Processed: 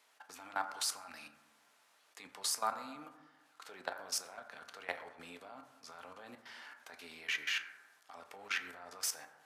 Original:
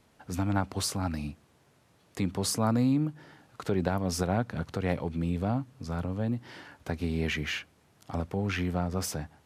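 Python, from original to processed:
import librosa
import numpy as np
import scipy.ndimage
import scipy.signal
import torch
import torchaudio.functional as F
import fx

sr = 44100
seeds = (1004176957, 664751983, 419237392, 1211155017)

y = scipy.signal.sosfilt(scipy.signal.butter(2, 1000.0, 'highpass', fs=sr, output='sos'), x)
y = fx.level_steps(y, sr, step_db=18)
y = fx.rev_fdn(y, sr, rt60_s=1.2, lf_ratio=1.0, hf_ratio=0.35, size_ms=68.0, drr_db=5.5)
y = F.gain(torch.from_numpy(y), 1.5).numpy()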